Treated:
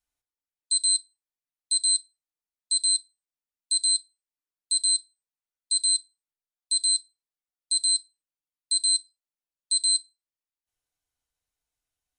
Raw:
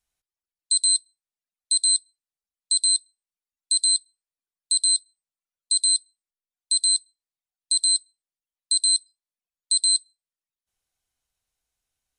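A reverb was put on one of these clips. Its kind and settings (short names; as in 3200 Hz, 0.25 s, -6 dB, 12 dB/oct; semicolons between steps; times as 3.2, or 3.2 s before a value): FDN reverb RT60 0.52 s, low-frequency decay 0.85×, high-frequency decay 0.35×, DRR 3.5 dB; gain -6 dB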